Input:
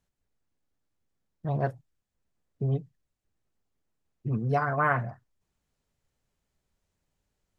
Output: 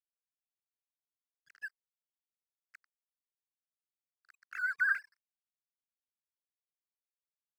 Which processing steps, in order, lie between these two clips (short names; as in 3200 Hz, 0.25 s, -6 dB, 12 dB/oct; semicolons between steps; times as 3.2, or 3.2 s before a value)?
sine-wave speech; steep high-pass 1400 Hz 96 dB/oct; crossover distortion -55.5 dBFS